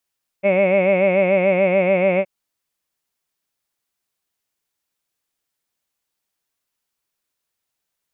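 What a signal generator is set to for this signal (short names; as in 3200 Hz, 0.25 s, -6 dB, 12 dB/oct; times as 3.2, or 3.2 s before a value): formant vowel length 1.82 s, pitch 191 Hz, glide -0.5 st, vibrato 6.9 Hz, F1 590 Hz, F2 2200 Hz, F3 2600 Hz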